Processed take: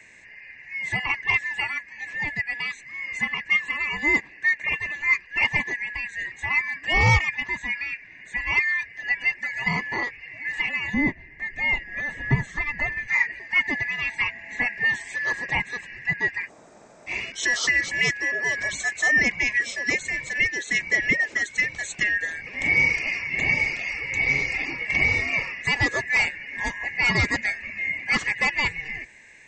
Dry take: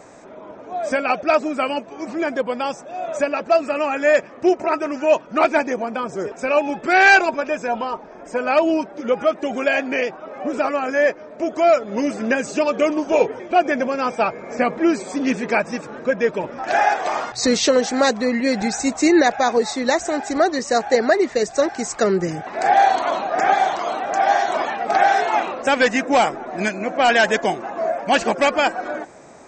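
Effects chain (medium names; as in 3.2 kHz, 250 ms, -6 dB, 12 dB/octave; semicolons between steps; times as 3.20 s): four frequency bands reordered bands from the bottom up 2143; 10.94–13.08 s: tilt EQ -3.5 dB/octave; 16.47–17.09 s: room tone, crossfade 0.06 s; trim -6 dB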